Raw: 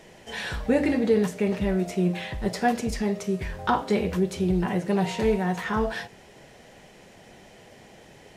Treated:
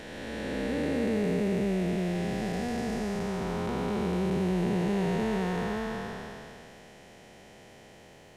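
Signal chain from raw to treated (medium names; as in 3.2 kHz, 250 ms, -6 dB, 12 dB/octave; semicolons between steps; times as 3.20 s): spectral blur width 894 ms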